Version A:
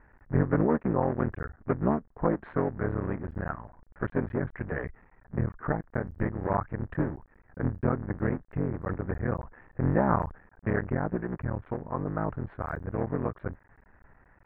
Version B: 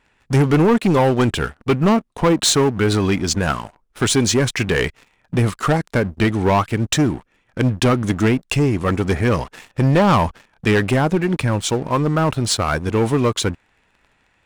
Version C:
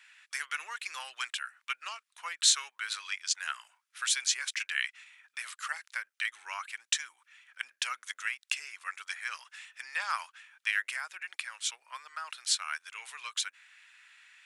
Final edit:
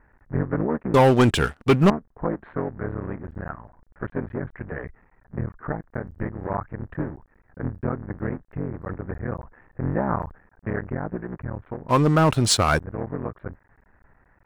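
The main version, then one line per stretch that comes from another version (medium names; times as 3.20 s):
A
0.94–1.90 s: from B
11.89–12.79 s: from B
not used: C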